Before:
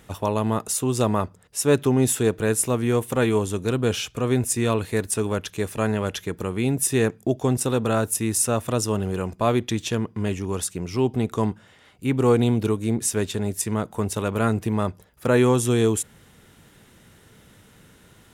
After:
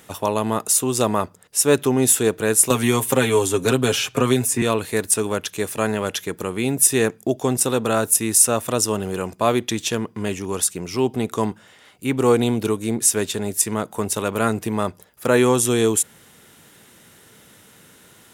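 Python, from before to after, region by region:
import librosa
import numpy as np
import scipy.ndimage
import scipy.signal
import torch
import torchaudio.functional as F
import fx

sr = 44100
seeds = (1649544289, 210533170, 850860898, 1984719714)

y = fx.chain(x, sr, fx.comb(ms=7.4, depth=0.68),
    fx.band_squash(depth_pct=100), at=(2.7, 4.62))
y = fx.highpass(y, sr, hz=240.0, slope=6)
y = fx.high_shelf(y, sr, hz=6000.0, db=6.5)
y = F.gain(torch.from_numpy(y), 3.5).numpy()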